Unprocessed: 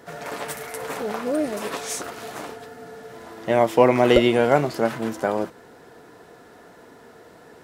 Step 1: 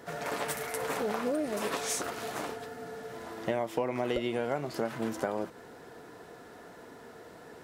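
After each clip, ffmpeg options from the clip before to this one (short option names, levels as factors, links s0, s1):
-af "acompressor=threshold=0.0562:ratio=10,volume=0.794"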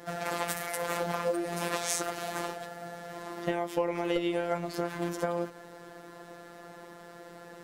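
-af "afftfilt=real='hypot(re,im)*cos(PI*b)':imag='0':win_size=1024:overlap=0.75,volume=1.78"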